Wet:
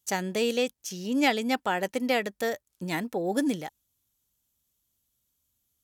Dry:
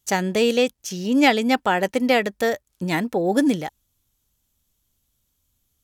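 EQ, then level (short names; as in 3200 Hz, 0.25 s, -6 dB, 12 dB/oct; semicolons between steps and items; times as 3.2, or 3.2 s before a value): HPF 86 Hz 6 dB/oct; high shelf 5800 Hz +5 dB; -7.5 dB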